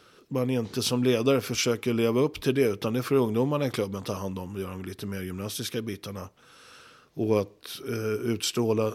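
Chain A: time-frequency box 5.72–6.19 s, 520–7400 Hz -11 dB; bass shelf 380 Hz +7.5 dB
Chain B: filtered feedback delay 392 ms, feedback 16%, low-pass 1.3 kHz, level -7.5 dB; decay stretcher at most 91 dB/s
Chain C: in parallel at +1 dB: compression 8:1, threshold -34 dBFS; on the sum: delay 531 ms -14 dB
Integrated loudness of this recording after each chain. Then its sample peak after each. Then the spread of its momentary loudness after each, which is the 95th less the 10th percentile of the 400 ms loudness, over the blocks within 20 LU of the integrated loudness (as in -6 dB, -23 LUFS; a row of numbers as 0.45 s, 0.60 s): -24.0 LUFS, -27.0 LUFS, -25.5 LUFS; -7.0 dBFS, -10.5 dBFS, -9.0 dBFS; 11 LU, 12 LU, 10 LU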